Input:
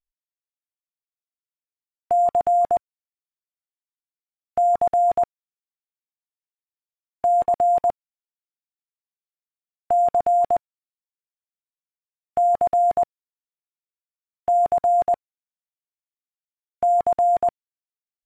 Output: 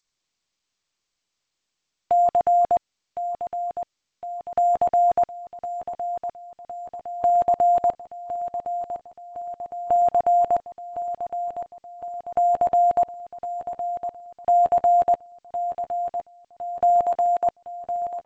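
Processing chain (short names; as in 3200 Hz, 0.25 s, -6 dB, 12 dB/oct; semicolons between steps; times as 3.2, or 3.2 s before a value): 17.06–17.47 HPF 620 Hz 6 dB/oct; feedback echo 1.06 s, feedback 59%, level -10 dB; G.722 64 kbps 16000 Hz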